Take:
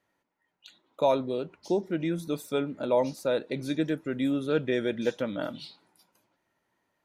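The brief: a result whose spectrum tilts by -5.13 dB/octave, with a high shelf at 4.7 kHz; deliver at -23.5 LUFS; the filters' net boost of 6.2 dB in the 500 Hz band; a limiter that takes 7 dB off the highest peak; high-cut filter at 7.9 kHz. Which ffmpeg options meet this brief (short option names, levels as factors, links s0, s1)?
-af "lowpass=7900,equalizer=f=500:t=o:g=7.5,highshelf=f=4700:g=-6.5,volume=1.5,alimiter=limit=0.251:level=0:latency=1"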